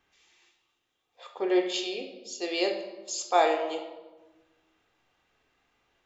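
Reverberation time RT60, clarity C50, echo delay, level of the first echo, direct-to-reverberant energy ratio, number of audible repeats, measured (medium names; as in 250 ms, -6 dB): 1.2 s, 8.0 dB, no echo, no echo, 3.0 dB, no echo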